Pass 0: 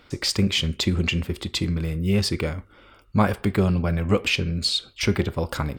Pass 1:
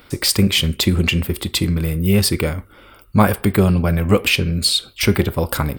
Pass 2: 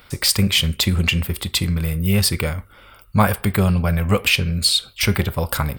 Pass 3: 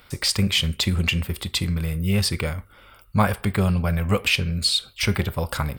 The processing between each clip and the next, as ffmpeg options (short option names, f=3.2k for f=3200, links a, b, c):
-af "aexciter=amount=2.9:drive=8.6:freq=8.9k,volume=6dB"
-af "equalizer=f=320:w=1.3:g=-9.5"
-filter_complex "[0:a]acrossover=split=8900[a][b];[b]acompressor=threshold=-35dB:ratio=4:attack=1:release=60[c];[a][c]amix=inputs=2:normalize=0,volume=-3.5dB"